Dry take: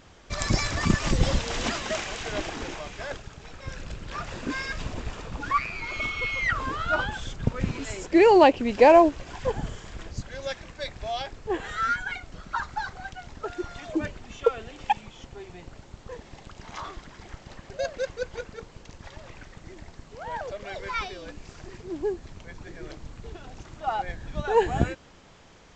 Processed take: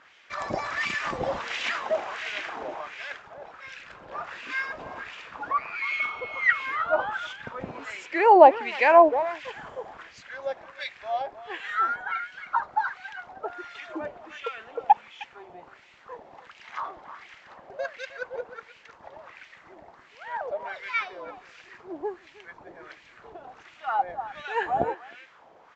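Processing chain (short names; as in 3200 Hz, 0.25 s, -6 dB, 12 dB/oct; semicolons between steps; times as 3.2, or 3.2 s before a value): speakerphone echo 0.31 s, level -11 dB; wah 1.4 Hz 670–2500 Hz, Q 2.1; gain +6.5 dB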